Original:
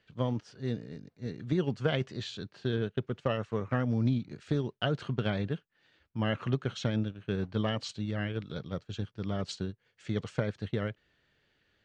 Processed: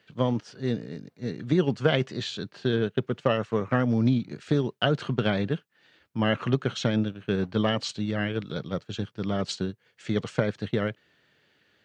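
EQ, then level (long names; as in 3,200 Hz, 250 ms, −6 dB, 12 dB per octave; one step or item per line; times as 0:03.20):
high-pass filter 130 Hz 12 dB per octave
+7.0 dB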